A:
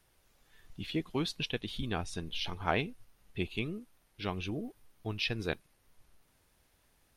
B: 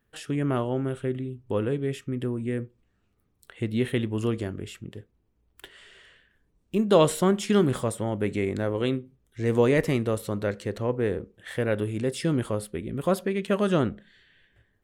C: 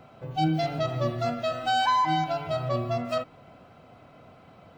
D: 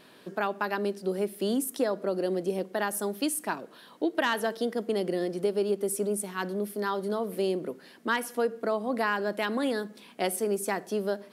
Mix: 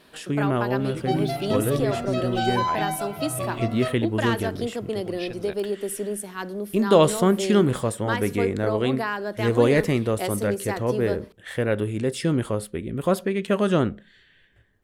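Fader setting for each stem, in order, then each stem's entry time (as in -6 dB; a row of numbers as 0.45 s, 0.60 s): -4.0 dB, +2.5 dB, -2.0 dB, 0.0 dB; 0.00 s, 0.00 s, 0.70 s, 0.00 s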